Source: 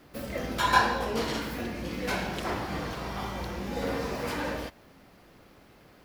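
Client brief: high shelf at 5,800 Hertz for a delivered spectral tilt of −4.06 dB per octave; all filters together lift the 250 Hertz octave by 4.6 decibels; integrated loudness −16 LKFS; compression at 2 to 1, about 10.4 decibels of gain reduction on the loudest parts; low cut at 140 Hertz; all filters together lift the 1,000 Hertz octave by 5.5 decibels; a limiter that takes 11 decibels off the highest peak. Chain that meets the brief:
high-pass filter 140 Hz
parametric band 250 Hz +6 dB
parametric band 1,000 Hz +6 dB
high-shelf EQ 5,800 Hz −6 dB
downward compressor 2 to 1, threshold −30 dBFS
level +18 dB
brickwall limiter −6.5 dBFS

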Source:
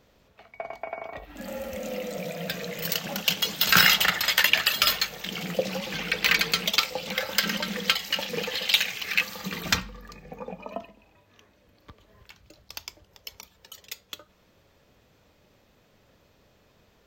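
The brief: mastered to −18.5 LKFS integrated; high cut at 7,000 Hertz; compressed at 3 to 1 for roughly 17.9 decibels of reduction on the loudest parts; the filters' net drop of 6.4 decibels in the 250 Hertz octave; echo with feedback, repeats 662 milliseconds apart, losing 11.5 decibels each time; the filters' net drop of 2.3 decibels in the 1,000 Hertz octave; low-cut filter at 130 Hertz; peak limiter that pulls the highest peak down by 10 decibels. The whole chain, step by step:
high-pass filter 130 Hz
low-pass filter 7,000 Hz
parametric band 250 Hz −8.5 dB
parametric band 1,000 Hz −3 dB
downward compressor 3 to 1, threshold −41 dBFS
brickwall limiter −28 dBFS
repeating echo 662 ms, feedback 27%, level −11.5 dB
level +23.5 dB

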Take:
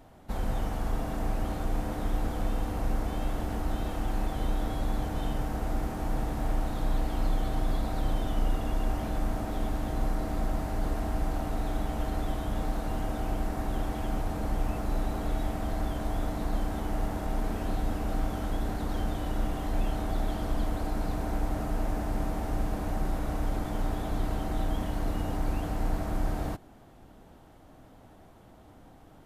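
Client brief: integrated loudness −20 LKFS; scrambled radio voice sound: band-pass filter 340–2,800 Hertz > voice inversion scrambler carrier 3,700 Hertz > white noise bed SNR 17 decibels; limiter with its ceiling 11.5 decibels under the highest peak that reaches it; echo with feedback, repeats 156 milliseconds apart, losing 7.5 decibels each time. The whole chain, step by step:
brickwall limiter −27.5 dBFS
band-pass filter 340–2,800 Hz
repeating echo 156 ms, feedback 42%, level −7.5 dB
voice inversion scrambler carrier 3,700 Hz
white noise bed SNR 17 dB
level +19.5 dB

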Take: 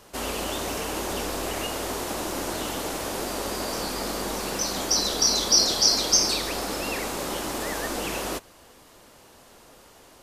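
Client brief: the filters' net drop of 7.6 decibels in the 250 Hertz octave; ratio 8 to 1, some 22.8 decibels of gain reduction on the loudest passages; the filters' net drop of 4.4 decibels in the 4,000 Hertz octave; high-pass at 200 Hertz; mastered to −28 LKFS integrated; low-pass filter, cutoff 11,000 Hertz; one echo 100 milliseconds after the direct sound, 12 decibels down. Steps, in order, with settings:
high-pass filter 200 Hz
low-pass filter 11,000 Hz
parametric band 250 Hz −9 dB
parametric band 4,000 Hz −6 dB
downward compressor 8 to 1, threshold −43 dBFS
single-tap delay 100 ms −12 dB
level +16.5 dB

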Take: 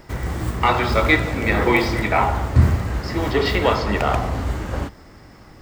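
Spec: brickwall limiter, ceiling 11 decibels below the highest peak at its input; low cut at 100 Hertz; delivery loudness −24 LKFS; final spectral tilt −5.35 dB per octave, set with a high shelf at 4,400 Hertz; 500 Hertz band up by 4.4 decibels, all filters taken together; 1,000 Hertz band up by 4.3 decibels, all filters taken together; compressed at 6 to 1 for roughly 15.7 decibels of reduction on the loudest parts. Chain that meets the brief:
high-pass filter 100 Hz
parametric band 500 Hz +4.5 dB
parametric band 1,000 Hz +4.5 dB
high-shelf EQ 4,400 Hz −8.5 dB
downward compressor 6 to 1, threshold −27 dBFS
level +9.5 dB
brickwall limiter −14.5 dBFS

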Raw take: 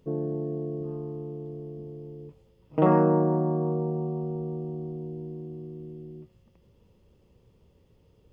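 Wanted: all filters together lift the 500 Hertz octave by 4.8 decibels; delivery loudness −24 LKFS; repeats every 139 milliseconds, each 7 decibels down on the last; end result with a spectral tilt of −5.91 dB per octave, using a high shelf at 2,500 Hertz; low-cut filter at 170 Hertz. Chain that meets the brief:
high-pass filter 170 Hz
parametric band 500 Hz +6 dB
high-shelf EQ 2,500 Hz +5 dB
repeating echo 139 ms, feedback 45%, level −7 dB
level +1.5 dB

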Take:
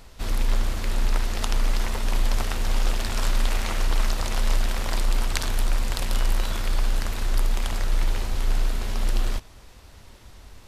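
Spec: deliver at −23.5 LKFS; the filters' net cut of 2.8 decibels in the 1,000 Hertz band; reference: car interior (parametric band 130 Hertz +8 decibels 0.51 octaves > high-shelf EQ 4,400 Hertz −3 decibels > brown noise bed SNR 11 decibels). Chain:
parametric band 130 Hz +8 dB 0.51 octaves
parametric band 1,000 Hz −3.5 dB
high-shelf EQ 4,400 Hz −3 dB
brown noise bed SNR 11 dB
level +4.5 dB

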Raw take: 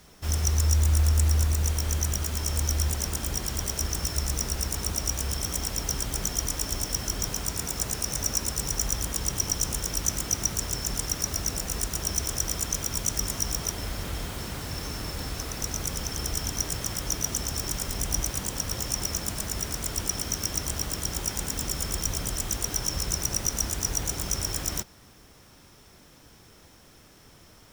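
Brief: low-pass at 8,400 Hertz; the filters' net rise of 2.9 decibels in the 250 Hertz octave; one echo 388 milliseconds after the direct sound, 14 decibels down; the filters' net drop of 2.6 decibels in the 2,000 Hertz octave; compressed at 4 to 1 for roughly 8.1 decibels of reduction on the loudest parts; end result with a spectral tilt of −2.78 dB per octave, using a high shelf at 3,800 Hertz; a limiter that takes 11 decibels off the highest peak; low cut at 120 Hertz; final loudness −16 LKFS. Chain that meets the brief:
high-pass filter 120 Hz
low-pass filter 8,400 Hz
parametric band 250 Hz +4.5 dB
parametric band 2,000 Hz −4.5 dB
high-shelf EQ 3,800 Hz +4 dB
downward compressor 4 to 1, threshold −31 dBFS
brickwall limiter −27 dBFS
single-tap delay 388 ms −14 dB
level +21.5 dB

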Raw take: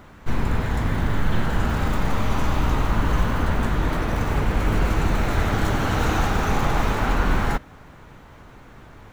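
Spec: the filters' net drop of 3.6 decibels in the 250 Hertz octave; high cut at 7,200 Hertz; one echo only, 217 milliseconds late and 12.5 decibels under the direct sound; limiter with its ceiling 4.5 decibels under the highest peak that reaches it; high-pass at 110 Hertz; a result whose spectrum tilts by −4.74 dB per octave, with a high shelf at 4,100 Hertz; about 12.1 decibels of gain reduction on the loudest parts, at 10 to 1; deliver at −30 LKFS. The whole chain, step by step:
high-pass filter 110 Hz
low-pass filter 7,200 Hz
parametric band 250 Hz −4.5 dB
high-shelf EQ 4,100 Hz +8 dB
downward compressor 10 to 1, threshold −33 dBFS
brickwall limiter −28.5 dBFS
single-tap delay 217 ms −12.5 dB
level +8.5 dB

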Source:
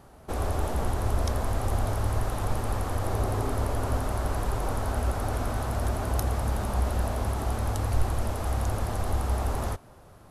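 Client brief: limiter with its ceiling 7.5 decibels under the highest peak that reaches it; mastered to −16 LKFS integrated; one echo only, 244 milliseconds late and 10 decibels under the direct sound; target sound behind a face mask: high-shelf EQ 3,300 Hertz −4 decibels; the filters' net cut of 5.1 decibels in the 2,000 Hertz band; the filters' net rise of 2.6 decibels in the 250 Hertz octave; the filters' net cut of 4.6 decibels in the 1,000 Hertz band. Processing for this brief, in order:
parametric band 250 Hz +3.5 dB
parametric band 1,000 Hz −5.5 dB
parametric band 2,000 Hz −3.5 dB
brickwall limiter −20 dBFS
high-shelf EQ 3,300 Hz −4 dB
single-tap delay 244 ms −10 dB
level +15 dB

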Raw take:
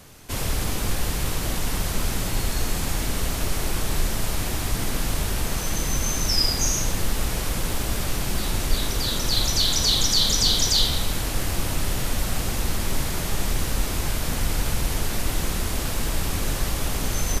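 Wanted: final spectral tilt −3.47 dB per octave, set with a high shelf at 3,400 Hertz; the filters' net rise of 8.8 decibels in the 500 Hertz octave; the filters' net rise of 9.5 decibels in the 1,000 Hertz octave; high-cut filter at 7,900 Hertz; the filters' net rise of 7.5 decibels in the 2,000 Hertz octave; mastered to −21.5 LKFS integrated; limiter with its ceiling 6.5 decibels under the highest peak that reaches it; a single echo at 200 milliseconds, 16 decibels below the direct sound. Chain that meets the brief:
low-pass filter 7,900 Hz
parametric band 500 Hz +8.5 dB
parametric band 1,000 Hz +7.5 dB
parametric band 2,000 Hz +4 dB
high-shelf EQ 3,400 Hz +8.5 dB
brickwall limiter −7.5 dBFS
single-tap delay 200 ms −16 dB
level −1 dB

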